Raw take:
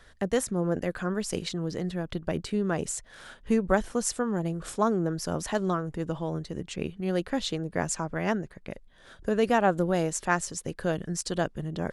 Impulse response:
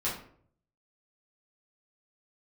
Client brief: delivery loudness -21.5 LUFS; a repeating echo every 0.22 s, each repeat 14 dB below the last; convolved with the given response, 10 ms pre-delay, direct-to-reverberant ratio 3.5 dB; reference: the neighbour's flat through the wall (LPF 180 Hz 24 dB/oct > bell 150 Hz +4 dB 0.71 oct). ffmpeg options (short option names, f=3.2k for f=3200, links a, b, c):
-filter_complex "[0:a]aecho=1:1:220|440:0.2|0.0399,asplit=2[a][b];[1:a]atrim=start_sample=2205,adelay=10[c];[b][c]afir=irnorm=-1:irlink=0,volume=-10.5dB[d];[a][d]amix=inputs=2:normalize=0,lowpass=f=180:w=0.5412,lowpass=f=180:w=1.3066,equalizer=f=150:t=o:w=0.71:g=4,volume=12.5dB"